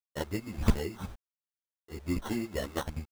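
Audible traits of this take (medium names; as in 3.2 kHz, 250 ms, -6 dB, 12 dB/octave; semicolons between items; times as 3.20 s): a quantiser's noise floor 8-bit, dither none; tremolo triangle 1.9 Hz, depth 50%; aliases and images of a low sample rate 2.4 kHz, jitter 0%; a shimmering, thickened sound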